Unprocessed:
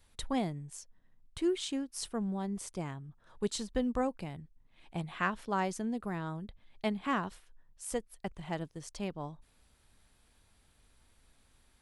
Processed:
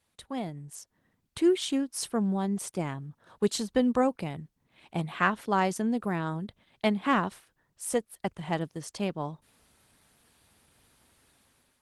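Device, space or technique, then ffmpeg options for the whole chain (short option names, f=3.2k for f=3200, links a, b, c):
video call: -af "highpass=110,dynaudnorm=f=280:g=5:m=11.5dB,volume=-4dB" -ar 48000 -c:a libopus -b:a 20k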